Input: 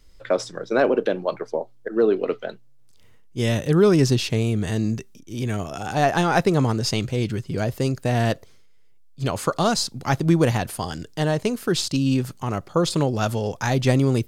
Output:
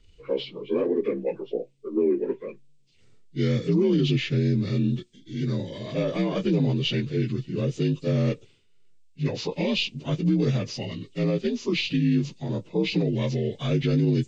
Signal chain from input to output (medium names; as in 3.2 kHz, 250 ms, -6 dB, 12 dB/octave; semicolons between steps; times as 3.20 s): frequency axis rescaled in octaves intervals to 82%; peak limiter -14 dBFS, peak gain reduction 6.5 dB; high-order bell 1.1 kHz -11 dB